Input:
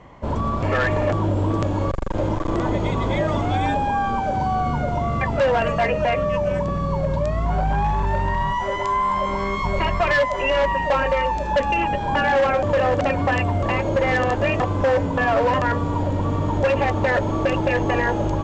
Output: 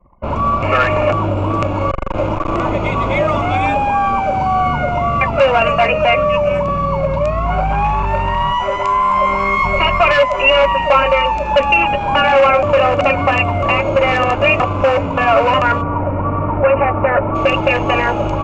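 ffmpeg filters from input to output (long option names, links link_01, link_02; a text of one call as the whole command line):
ffmpeg -i in.wav -filter_complex "[0:a]asplit=3[link_01][link_02][link_03];[link_01]afade=type=out:start_time=15.81:duration=0.02[link_04];[link_02]lowpass=frequency=2000:width=0.5412,lowpass=frequency=2000:width=1.3066,afade=type=in:start_time=15.81:duration=0.02,afade=type=out:start_time=17.34:duration=0.02[link_05];[link_03]afade=type=in:start_time=17.34:duration=0.02[link_06];[link_04][link_05][link_06]amix=inputs=3:normalize=0,anlmdn=1.58,superequalizer=8b=1.78:9b=1.58:10b=2.82:12b=3.55,volume=2.5dB" out.wav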